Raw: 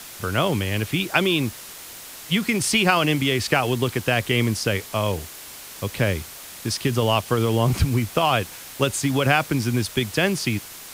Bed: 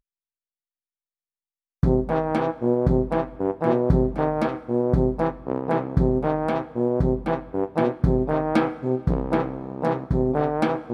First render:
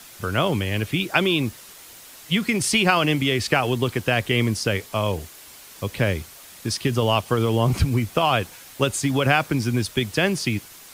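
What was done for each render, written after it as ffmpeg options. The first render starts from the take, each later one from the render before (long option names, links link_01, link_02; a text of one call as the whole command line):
ffmpeg -i in.wav -af "afftdn=noise_reduction=6:noise_floor=-40" out.wav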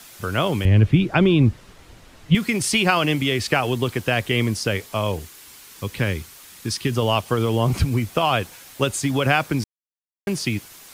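ffmpeg -i in.wav -filter_complex "[0:a]asettb=1/sr,asplit=3[link_01][link_02][link_03];[link_01]atrim=end=0.654[link_04];[link_02]atrim=start=0.65:end=2.35,asetpts=PTS-STARTPTS,afade=type=in:duration=0.004:curve=qsin,afade=type=out:start_time=1.696:duration=0.004:curve=qsin,aemphasis=mode=reproduction:type=riaa[link_05];[link_03]atrim=start=2.346[link_06];[link_04][link_05]acrossfade=duration=0.004:curve1=hsin:curve2=qsin[link_07];[link_07][link_06]acrossfade=duration=0.004:curve1=qsin:curve2=hsin,asettb=1/sr,asplit=3[link_08][link_09][link_10];[link_08]atrim=end=5.194[link_11];[link_09]atrim=start=5.19:end=6.92,asetpts=PTS-STARTPTS,afade=type=in:duration=0.004:curve=qsin,afade=type=out:start_time=1.726:duration=0.004:curve=qsin,equalizer=frequency=630:width=2.6:gain=-7.5[link_12];[link_10]atrim=start=6.916[link_13];[link_11][link_12]acrossfade=duration=0.004:curve1=hsin:curve2=qsin[link_14];[link_14][link_13]acrossfade=duration=0.004:curve1=qsin:curve2=hsin,asplit=3[link_15][link_16][link_17];[link_15]atrim=end=9.64,asetpts=PTS-STARTPTS,afade=type=out:start_time=9.636:duration=0.004:curve=hsin[link_18];[link_16]atrim=start=9.64:end=10.27,asetpts=PTS-STARTPTS,volume=0[link_19];[link_17]atrim=start=10.27,asetpts=PTS-STARTPTS,afade=type=in:duration=0.004:curve=hsin[link_20];[link_18][link_19][link_20]concat=n=3:v=0:a=1" out.wav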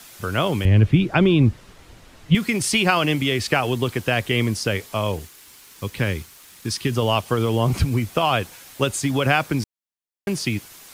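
ffmpeg -i in.wav -filter_complex "[0:a]asettb=1/sr,asplit=3[link_01][link_02][link_03];[link_01]atrim=end=4.954[link_04];[link_02]atrim=start=4.95:end=6.74,asetpts=PTS-STARTPTS,afade=type=in:duration=0.004:curve=qsin,afade=type=out:start_time=1.786:duration=0.004:curve=qsin,aeval=exprs='sgn(val(0))*max(abs(val(0))-0.002,0)':channel_layout=same[link_05];[link_03]atrim=start=6.736[link_06];[link_04][link_05]acrossfade=duration=0.004:curve1=hsin:curve2=qsin[link_07];[link_07][link_06]acrossfade=duration=0.004:curve1=qsin:curve2=hsin" out.wav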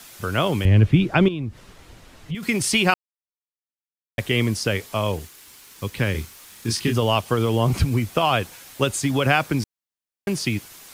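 ffmpeg -i in.wav -filter_complex "[0:a]asettb=1/sr,asplit=3[link_01][link_02][link_03];[link_01]atrim=end=1.284[link_04];[link_02]atrim=start=1.28:end=2.43,asetpts=PTS-STARTPTS,afade=type=in:duration=0.004:curve=qsin,afade=type=out:start_time=1.146:duration=0.004:curve=qsin,acompressor=threshold=-29dB:ratio=3:attack=3.2:release=140:knee=1:detection=peak[link_05];[link_03]atrim=start=2.426[link_06];[link_04][link_05]acrossfade=duration=0.004:curve1=hsin:curve2=qsin[link_07];[link_07][link_06]acrossfade=duration=0.004:curve1=qsin:curve2=hsin,asettb=1/sr,asplit=3[link_08][link_09][link_10];[link_08]atrim=end=6.124[link_11];[link_09]atrim=start=6.12:end=6.98,asetpts=PTS-STARTPTS,afade=type=in:duration=0.004:curve=qsin,afade=type=out:start_time=0.856:duration=0.004:curve=qsin,asplit=2[link_12][link_13];[link_13]adelay=26,volume=-3.5dB[link_14];[link_12][link_14]amix=inputs=2:normalize=0,atrim=end_sample=37926[link_15];[link_10]atrim=start=6.976[link_16];[link_11][link_15]acrossfade=duration=0.004:curve1=hsin:curve2=qsin[link_17];[link_17][link_16]acrossfade=duration=0.004:curve1=qsin:curve2=hsin,asplit=3[link_18][link_19][link_20];[link_18]atrim=end=2.94,asetpts=PTS-STARTPTS,afade=type=out:start_time=2.936:duration=0.004:curve=hsin[link_21];[link_19]atrim=start=2.94:end=4.18,asetpts=PTS-STARTPTS,volume=0[link_22];[link_20]atrim=start=4.18,asetpts=PTS-STARTPTS,afade=type=in:duration=0.004:curve=hsin[link_23];[link_21][link_22][link_23]concat=n=3:v=0:a=1" out.wav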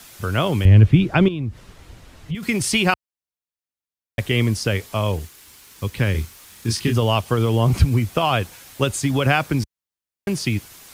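ffmpeg -i in.wav -af "equalizer=frequency=65:width=0.65:gain=6.5" out.wav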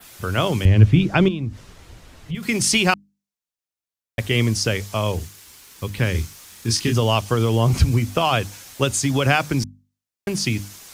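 ffmpeg -i in.wav -af "bandreject=frequency=50:width_type=h:width=6,bandreject=frequency=100:width_type=h:width=6,bandreject=frequency=150:width_type=h:width=6,bandreject=frequency=200:width_type=h:width=6,bandreject=frequency=250:width_type=h:width=6,bandreject=frequency=300:width_type=h:width=6,adynamicequalizer=threshold=0.00708:dfrequency=6100:dqfactor=1.3:tfrequency=6100:tqfactor=1.3:attack=5:release=100:ratio=0.375:range=3.5:mode=boostabove:tftype=bell" out.wav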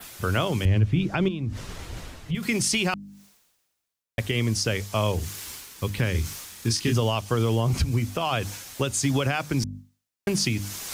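ffmpeg -i in.wav -af "alimiter=limit=-13.5dB:level=0:latency=1:release=372,areverse,acompressor=mode=upward:threshold=-27dB:ratio=2.5,areverse" out.wav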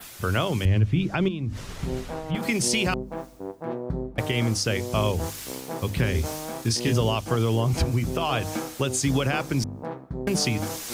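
ffmpeg -i in.wav -i bed.wav -filter_complex "[1:a]volume=-11dB[link_01];[0:a][link_01]amix=inputs=2:normalize=0" out.wav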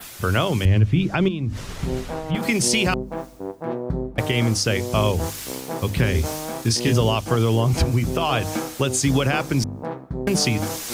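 ffmpeg -i in.wav -af "volume=4dB" out.wav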